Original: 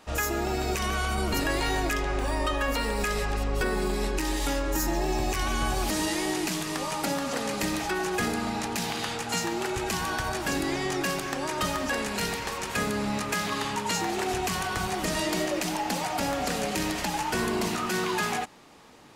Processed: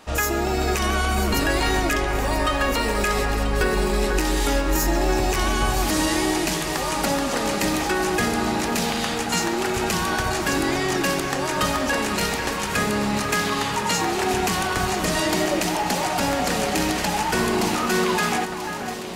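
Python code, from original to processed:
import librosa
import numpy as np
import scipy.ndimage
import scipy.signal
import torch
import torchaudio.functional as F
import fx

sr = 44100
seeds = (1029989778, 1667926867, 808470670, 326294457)

y = fx.echo_alternate(x, sr, ms=493, hz=2100.0, feedback_pct=80, wet_db=-8.5)
y = y * librosa.db_to_amplitude(5.5)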